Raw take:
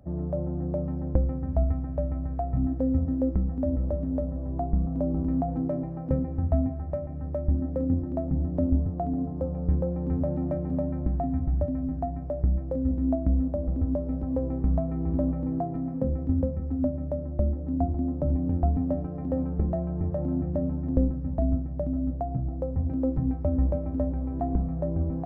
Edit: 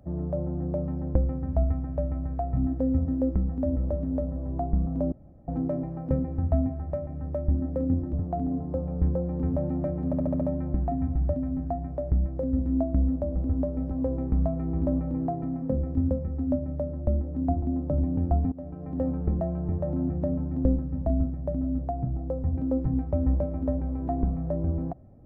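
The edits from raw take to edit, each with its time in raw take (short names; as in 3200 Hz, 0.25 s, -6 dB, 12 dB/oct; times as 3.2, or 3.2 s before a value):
5.12–5.48 room tone
8.13–8.8 cut
10.73 stutter 0.07 s, 6 plays
18.84–19.32 fade in, from -19.5 dB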